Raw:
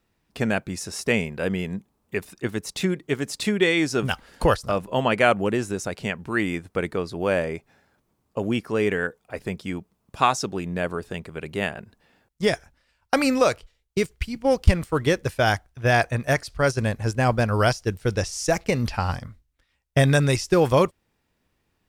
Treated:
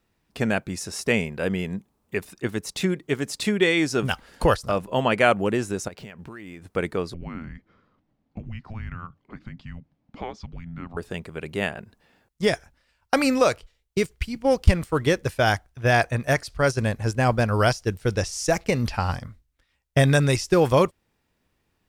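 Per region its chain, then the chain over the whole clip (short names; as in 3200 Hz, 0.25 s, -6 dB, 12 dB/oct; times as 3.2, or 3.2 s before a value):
5.88–6.62 median filter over 5 samples + compressor 20:1, threshold -35 dBFS
7.14–10.97 compressor 2:1, threshold -39 dBFS + frequency shift -340 Hz + air absorption 220 m
whole clip: dry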